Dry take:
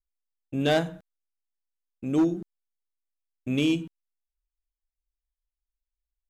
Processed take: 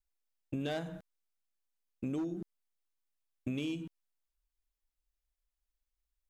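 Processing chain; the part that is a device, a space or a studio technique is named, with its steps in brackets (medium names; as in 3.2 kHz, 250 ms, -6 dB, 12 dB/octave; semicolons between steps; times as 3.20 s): serial compression, leveller first (compression 2.5:1, threshold -27 dBFS, peak gain reduction 6 dB; compression 5:1, threshold -35 dBFS, peak gain reduction 10 dB); trim +1 dB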